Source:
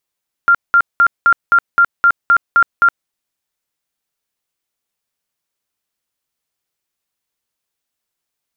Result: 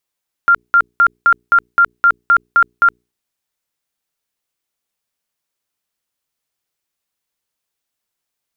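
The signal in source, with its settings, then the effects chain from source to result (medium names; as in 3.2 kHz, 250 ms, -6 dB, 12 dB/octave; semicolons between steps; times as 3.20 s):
tone bursts 1.39 kHz, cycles 93, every 0.26 s, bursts 10, -6 dBFS
hum notches 60/120/180/240/300/360/420 Hz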